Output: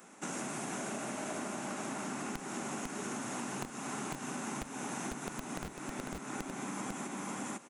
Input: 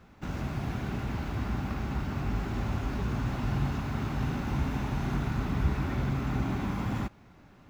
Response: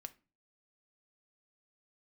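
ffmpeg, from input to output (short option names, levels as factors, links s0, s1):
-filter_complex "[0:a]aresample=22050,aresample=44100,acrossover=split=170[s0][s1];[s0]acrusher=bits=3:mix=0:aa=0.000001[s2];[s1]aexciter=amount=12.3:drive=4.7:freq=6600[s3];[s2][s3]amix=inputs=2:normalize=0,asettb=1/sr,asplit=3[s4][s5][s6];[s4]atrim=end=0.784[s7];[s5]atrim=start=0.78:end=1.56,asetpts=PTS-STARTPTS,afade=t=in:d=0.004:c=qsin,afade=t=out:st=0.776:d=0.004:c=qsin,equalizer=f=620:t=o:w=0.26:g=10[s8];[s6]atrim=start=1.556[s9];[s7][s8]acrossfade=d=0.004:c1=hsin:c2=qsin[s10];[s10][s9]acrossfade=d=0.004:c1=qsin:c2=hsin,asplit=2[s11][s12];[s12]aecho=0:1:41|499:0.112|0.631[s13];[s11][s13]amix=inputs=2:normalize=0,acompressor=threshold=0.0141:ratio=16,equalizer=f=87:t=o:w=1.1:g=-14,volume=1.41"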